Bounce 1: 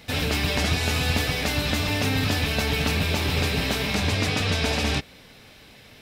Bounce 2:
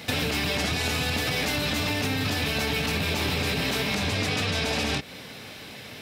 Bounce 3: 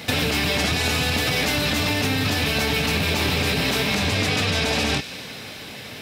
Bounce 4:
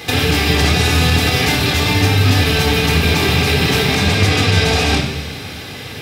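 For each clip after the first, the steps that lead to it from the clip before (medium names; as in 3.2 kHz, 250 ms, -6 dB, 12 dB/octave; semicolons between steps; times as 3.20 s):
high-pass 100 Hz 12 dB/octave; peak limiter -19.5 dBFS, peak gain reduction 9.5 dB; compression 3:1, threshold -33 dBFS, peak gain reduction 6.5 dB; trim +8 dB
feedback echo behind a high-pass 96 ms, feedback 77%, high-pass 2 kHz, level -13.5 dB; trim +4.5 dB
simulated room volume 3400 m³, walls furnished, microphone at 3.8 m; trim +3 dB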